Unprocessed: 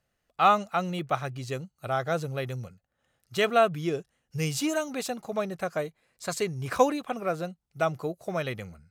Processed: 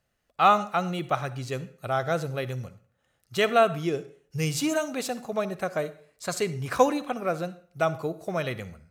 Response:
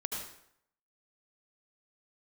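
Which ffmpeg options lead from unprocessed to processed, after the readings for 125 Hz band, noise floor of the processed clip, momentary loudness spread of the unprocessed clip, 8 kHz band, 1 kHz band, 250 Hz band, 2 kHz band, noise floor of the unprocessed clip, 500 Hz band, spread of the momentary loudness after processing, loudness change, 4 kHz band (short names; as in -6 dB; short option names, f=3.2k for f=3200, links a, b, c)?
+1.5 dB, -74 dBFS, 13 LU, +1.5 dB, +1.5 dB, +1.5 dB, +1.5 dB, -79 dBFS, +1.5 dB, 13 LU, +1.5 dB, +1.5 dB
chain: -filter_complex "[0:a]asplit=2[a][b];[1:a]atrim=start_sample=2205,asetrate=61740,aresample=44100[c];[b][c]afir=irnorm=-1:irlink=0,volume=-11dB[d];[a][d]amix=inputs=2:normalize=0"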